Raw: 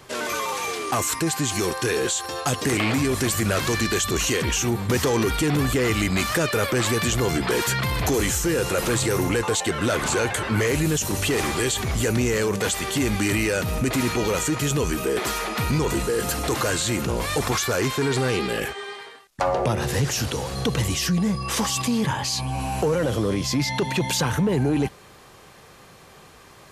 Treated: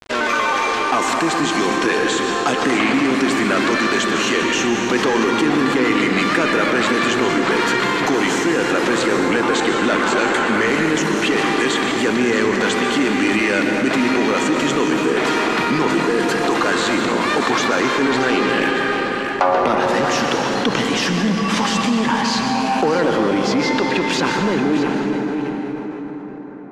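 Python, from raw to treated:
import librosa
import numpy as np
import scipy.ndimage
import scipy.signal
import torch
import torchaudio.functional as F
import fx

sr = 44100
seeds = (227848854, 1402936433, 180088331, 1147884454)

p1 = fx.fade_out_tail(x, sr, length_s=3.91)
p2 = scipy.signal.sosfilt(scipy.signal.butter(4, 240.0, 'highpass', fs=sr, output='sos'), p1)
p3 = fx.peak_eq(p2, sr, hz=480.0, db=-8.0, octaves=1.2)
p4 = fx.rider(p3, sr, range_db=10, speed_s=0.5)
p5 = p3 + (p4 * librosa.db_to_amplitude(-0.5))
p6 = np.sign(p5) * np.maximum(np.abs(p5) - 10.0 ** (-35.0 / 20.0), 0.0)
p7 = fx.spacing_loss(p6, sr, db_at_10k=24)
p8 = p7 + fx.echo_single(p7, sr, ms=628, db=-11.5, dry=0)
p9 = fx.rev_plate(p8, sr, seeds[0], rt60_s=2.9, hf_ratio=0.6, predelay_ms=105, drr_db=3.0)
p10 = fx.env_flatten(p9, sr, amount_pct=50)
y = p10 * librosa.db_to_amplitude(4.0)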